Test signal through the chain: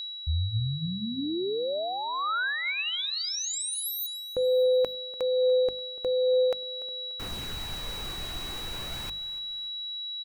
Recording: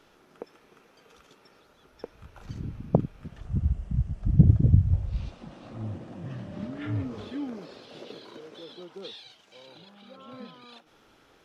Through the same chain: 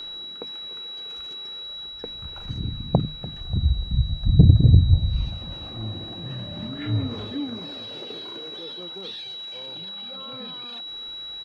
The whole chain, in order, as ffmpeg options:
-af "highshelf=f=2.6k:g=-6.5,aphaser=in_gain=1:out_gain=1:delay=2.8:decay=0.26:speed=0.42:type=sinusoidal,equalizer=f=440:w=0.47:g=-4.5,aecho=1:1:292|584|876:0.106|0.0477|0.0214,acontrast=53,bandreject=f=50:t=h:w=6,bandreject=f=100:t=h:w=6,bandreject=f=150:t=h:w=6,bandreject=f=200:t=h:w=6,bandreject=f=250:t=h:w=6,aeval=exprs='val(0)+0.0141*sin(2*PI*3900*n/s)':c=same,areverse,acompressor=mode=upward:threshold=-31dB:ratio=2.5,areverse"

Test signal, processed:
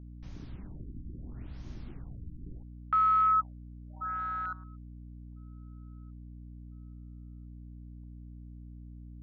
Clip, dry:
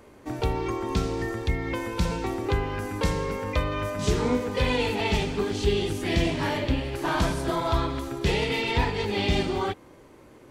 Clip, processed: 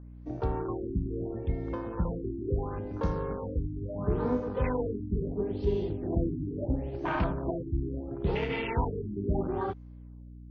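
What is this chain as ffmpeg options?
-af "afwtdn=0.0355,aeval=exprs='val(0)+0.00891*(sin(2*PI*60*n/s)+sin(2*PI*2*60*n/s)/2+sin(2*PI*3*60*n/s)/3+sin(2*PI*4*60*n/s)/4+sin(2*PI*5*60*n/s)/5)':c=same,afftfilt=real='re*lt(b*sr/1024,370*pow(6900/370,0.5+0.5*sin(2*PI*0.74*pts/sr)))':imag='im*lt(b*sr/1024,370*pow(6900/370,0.5+0.5*sin(2*PI*0.74*pts/sr)))':win_size=1024:overlap=0.75,volume=-4dB"

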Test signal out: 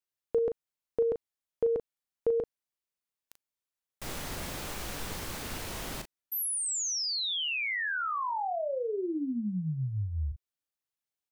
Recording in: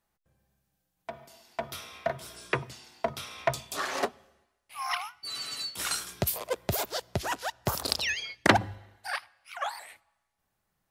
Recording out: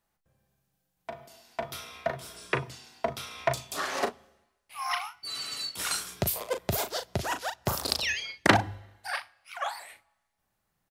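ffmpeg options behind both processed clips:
-filter_complex "[0:a]asplit=2[a][b];[b]adelay=38,volume=-8.5dB[c];[a][c]amix=inputs=2:normalize=0"

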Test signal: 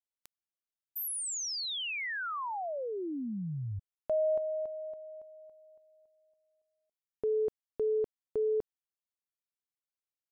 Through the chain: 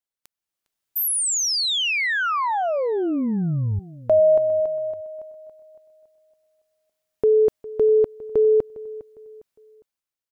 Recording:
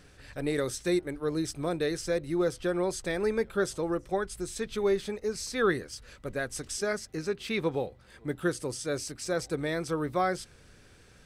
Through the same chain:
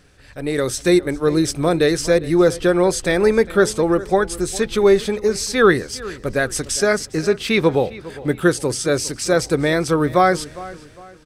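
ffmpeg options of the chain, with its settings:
-filter_complex "[0:a]dynaudnorm=f=110:g=11:m=11dB,asplit=2[a][b];[b]adelay=406,lowpass=f=4.3k:p=1,volume=-18dB,asplit=2[c][d];[d]adelay=406,lowpass=f=4.3k:p=1,volume=0.36,asplit=2[e][f];[f]adelay=406,lowpass=f=4.3k:p=1,volume=0.36[g];[c][e][g]amix=inputs=3:normalize=0[h];[a][h]amix=inputs=2:normalize=0,volume=2.5dB"

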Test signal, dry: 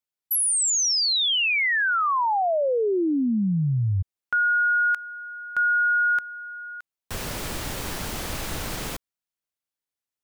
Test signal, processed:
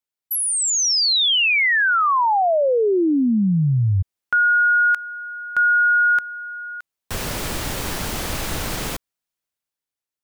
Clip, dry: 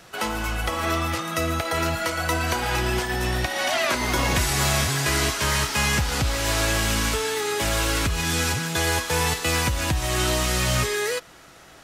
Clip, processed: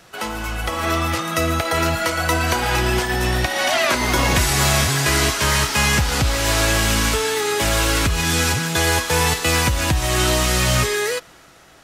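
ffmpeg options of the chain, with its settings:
-af "dynaudnorm=f=120:g=13:m=5dB"

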